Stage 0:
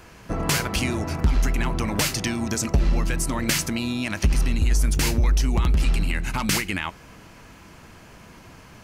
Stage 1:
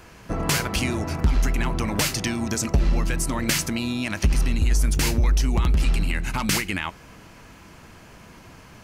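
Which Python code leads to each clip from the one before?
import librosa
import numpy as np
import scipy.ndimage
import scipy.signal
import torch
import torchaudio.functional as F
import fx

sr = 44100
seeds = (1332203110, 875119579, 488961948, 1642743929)

y = x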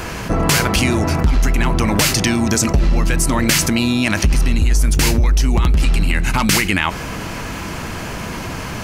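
y = fx.env_flatten(x, sr, amount_pct=50)
y = F.gain(torch.from_numpy(y), 4.0).numpy()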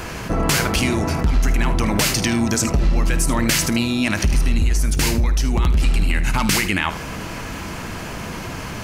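y = fx.room_early_taps(x, sr, ms=(52, 77), db=(-15.5, -14.0))
y = F.gain(torch.from_numpy(y), -3.5).numpy()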